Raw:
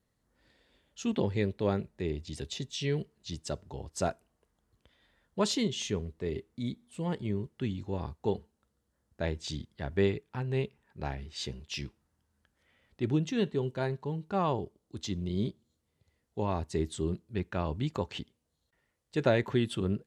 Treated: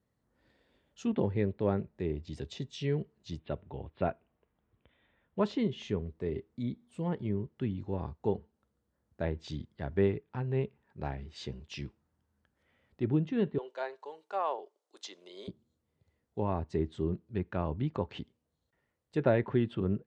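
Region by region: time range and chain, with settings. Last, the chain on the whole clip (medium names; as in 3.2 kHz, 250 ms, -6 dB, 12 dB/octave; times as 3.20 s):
3.39–5.40 s: steep low-pass 3.8 kHz 72 dB/octave + peaking EQ 2.4 kHz +6 dB 0.41 oct
13.58–15.48 s: high-pass 510 Hz 24 dB/octave + peaking EQ 6.8 kHz +6 dB 1.7 oct
whole clip: low-pass that closes with the level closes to 2.8 kHz, closed at -28.5 dBFS; high-pass 58 Hz; treble shelf 2.5 kHz -10 dB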